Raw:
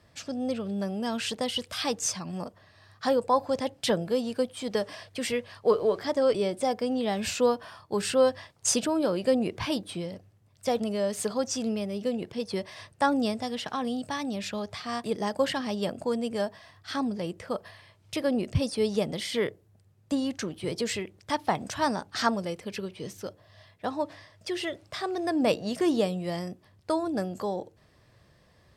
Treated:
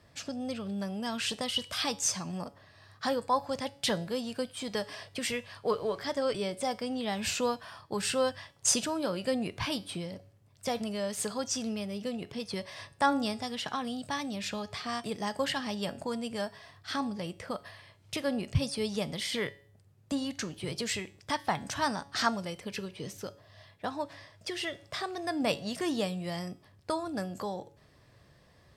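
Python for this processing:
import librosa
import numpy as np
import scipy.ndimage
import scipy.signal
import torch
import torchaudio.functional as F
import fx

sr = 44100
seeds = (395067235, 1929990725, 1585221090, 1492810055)

y = fx.comb_fb(x, sr, f0_hz=140.0, decay_s=0.44, harmonics='all', damping=0.0, mix_pct=50)
y = fx.dynamic_eq(y, sr, hz=400.0, q=0.75, threshold_db=-44.0, ratio=4.0, max_db=-8)
y = F.gain(torch.from_numpy(y), 5.0).numpy()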